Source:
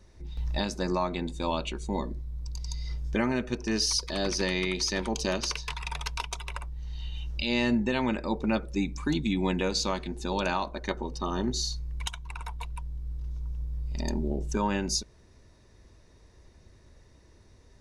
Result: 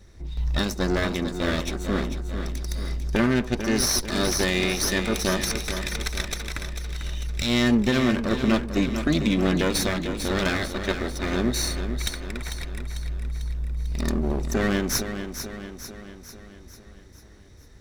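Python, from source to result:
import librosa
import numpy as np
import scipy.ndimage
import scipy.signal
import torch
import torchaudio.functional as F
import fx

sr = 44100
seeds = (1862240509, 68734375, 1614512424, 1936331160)

y = fx.lower_of_two(x, sr, delay_ms=0.53)
y = fx.echo_feedback(y, sr, ms=446, feedback_pct=55, wet_db=-9.0)
y = y * 10.0 ** (6.0 / 20.0)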